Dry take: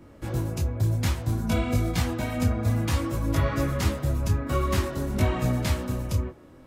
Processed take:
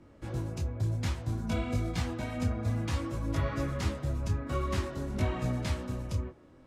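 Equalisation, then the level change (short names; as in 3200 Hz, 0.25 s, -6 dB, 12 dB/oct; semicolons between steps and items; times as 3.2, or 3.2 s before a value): air absorption 69 m; high shelf 7600 Hz +8 dB; -6.5 dB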